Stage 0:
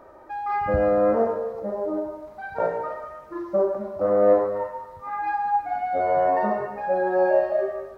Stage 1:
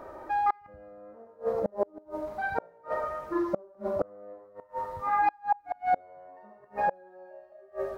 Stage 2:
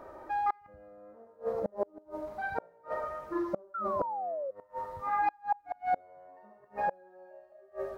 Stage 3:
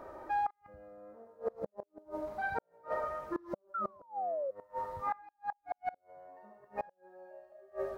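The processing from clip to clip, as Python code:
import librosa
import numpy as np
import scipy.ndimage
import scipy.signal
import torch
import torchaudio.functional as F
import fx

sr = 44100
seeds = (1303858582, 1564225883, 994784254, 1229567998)

y1 = fx.gate_flip(x, sr, shuts_db=-19.0, range_db=-33)
y1 = y1 * 10.0 ** (4.0 / 20.0)
y2 = fx.spec_paint(y1, sr, seeds[0], shape='fall', start_s=3.74, length_s=0.77, low_hz=520.0, high_hz=1400.0, level_db=-31.0)
y2 = y2 * 10.0 ** (-4.0 / 20.0)
y3 = fx.gate_flip(y2, sr, shuts_db=-24.0, range_db=-26)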